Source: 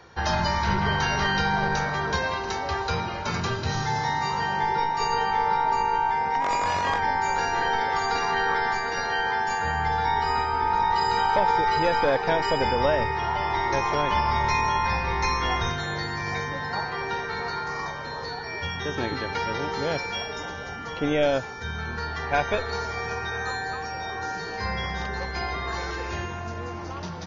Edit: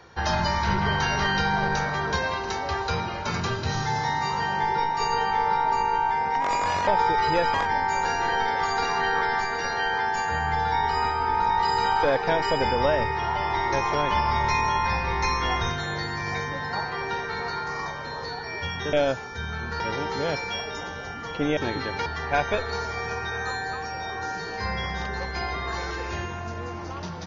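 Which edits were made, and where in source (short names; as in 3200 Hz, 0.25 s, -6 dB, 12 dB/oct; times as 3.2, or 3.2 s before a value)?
11.36–12.03 move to 6.87
18.93–19.42 swap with 21.19–22.06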